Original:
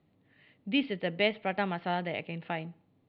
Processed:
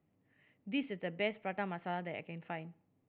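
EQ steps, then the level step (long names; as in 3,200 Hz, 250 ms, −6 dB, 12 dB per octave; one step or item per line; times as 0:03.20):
low-pass filter 2,800 Hz 24 dB per octave
−7.0 dB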